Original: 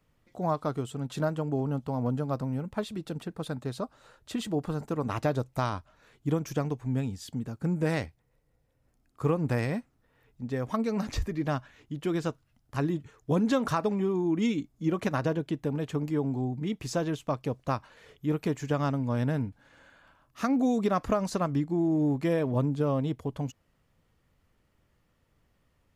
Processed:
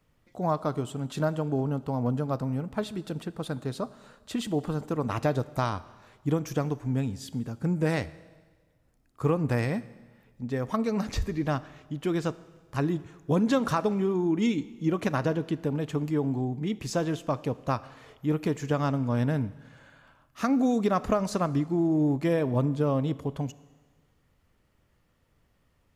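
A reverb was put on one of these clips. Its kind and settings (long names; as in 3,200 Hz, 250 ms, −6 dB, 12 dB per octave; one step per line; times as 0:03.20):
four-comb reverb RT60 1.4 s, combs from 26 ms, DRR 17 dB
level +1.5 dB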